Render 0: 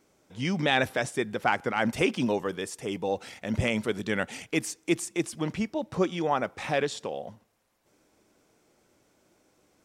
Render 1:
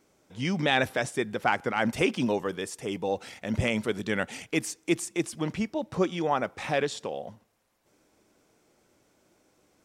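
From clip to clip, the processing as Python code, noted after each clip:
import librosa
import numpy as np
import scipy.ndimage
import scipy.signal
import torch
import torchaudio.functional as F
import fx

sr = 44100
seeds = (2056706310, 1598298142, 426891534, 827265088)

y = x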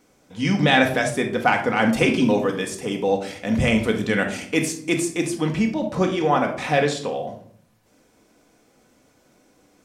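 y = fx.room_shoebox(x, sr, seeds[0], volume_m3=890.0, walls='furnished', distance_m=1.9)
y = y * librosa.db_to_amplitude(5.0)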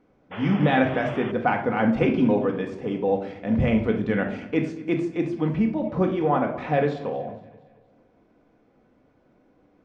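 y = fx.spec_paint(x, sr, seeds[1], shape='noise', start_s=0.31, length_s=1.01, low_hz=300.0, high_hz=3500.0, level_db=-31.0)
y = fx.spacing_loss(y, sr, db_at_10k=41)
y = fx.echo_feedback(y, sr, ms=232, feedback_pct=49, wet_db=-20)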